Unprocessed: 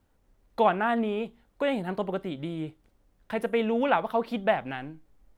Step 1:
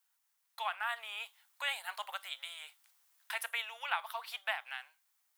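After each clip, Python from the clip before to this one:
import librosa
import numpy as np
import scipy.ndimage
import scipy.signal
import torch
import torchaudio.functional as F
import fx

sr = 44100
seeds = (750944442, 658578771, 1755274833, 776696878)

y = scipy.signal.sosfilt(scipy.signal.cheby2(4, 50, 330.0, 'highpass', fs=sr, output='sos'), x)
y = fx.tilt_eq(y, sr, slope=4.5)
y = fx.rider(y, sr, range_db=4, speed_s=0.5)
y = y * 10.0 ** (-6.0 / 20.0)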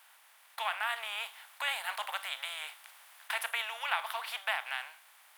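y = fx.bin_compress(x, sr, power=0.6)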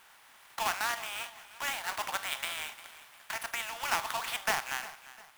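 y = fx.halfwave_hold(x, sr)
y = fx.tremolo_shape(y, sr, shape='triangle', hz=0.52, depth_pct=55)
y = fx.echo_feedback(y, sr, ms=351, feedback_pct=39, wet_db=-17.0)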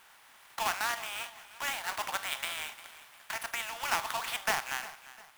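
y = x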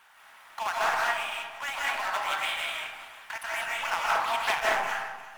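y = fx.envelope_sharpen(x, sr, power=1.5)
y = fx.rev_freeverb(y, sr, rt60_s=1.0, hf_ratio=0.35, predelay_ms=120, drr_db=-5.0)
y = fx.doppler_dist(y, sr, depth_ms=0.34)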